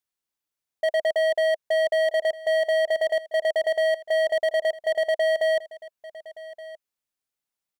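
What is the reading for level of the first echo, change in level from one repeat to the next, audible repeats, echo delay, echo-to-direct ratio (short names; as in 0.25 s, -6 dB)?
-18.0 dB, no steady repeat, 1, 1.172 s, -18.0 dB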